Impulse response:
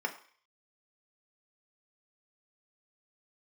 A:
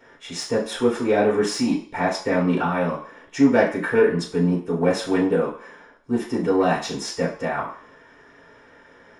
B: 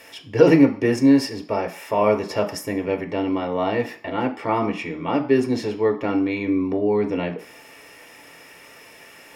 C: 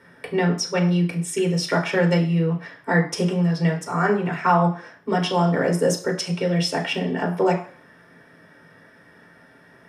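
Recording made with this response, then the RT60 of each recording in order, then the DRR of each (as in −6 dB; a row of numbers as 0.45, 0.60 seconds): B; 0.50, 0.50, 0.50 seconds; −6.0, 4.0, −0.5 decibels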